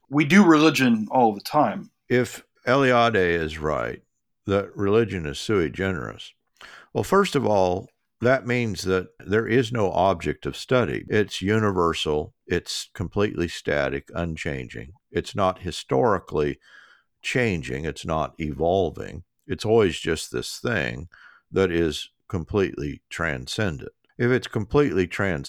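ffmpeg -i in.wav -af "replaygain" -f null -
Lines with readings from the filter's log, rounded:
track_gain = +2.8 dB
track_peak = 0.450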